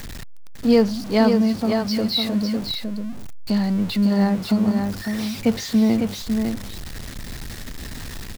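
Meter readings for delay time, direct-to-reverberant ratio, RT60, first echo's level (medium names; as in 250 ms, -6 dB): 553 ms, no reverb, no reverb, -5.5 dB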